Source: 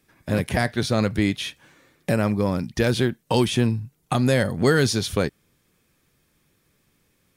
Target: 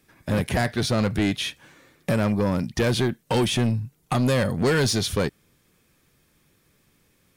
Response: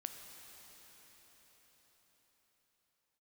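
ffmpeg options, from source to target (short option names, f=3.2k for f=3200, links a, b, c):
-af "asoftclip=type=tanh:threshold=-18.5dB,volume=2.5dB"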